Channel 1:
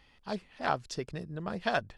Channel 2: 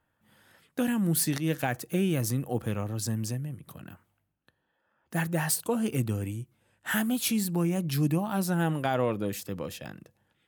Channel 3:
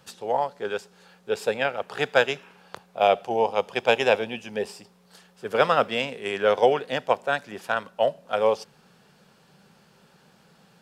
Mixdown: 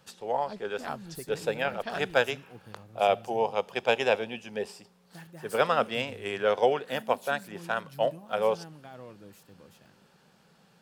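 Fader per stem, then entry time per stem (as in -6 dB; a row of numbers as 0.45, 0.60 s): -6.5, -19.0, -4.5 dB; 0.20, 0.00, 0.00 s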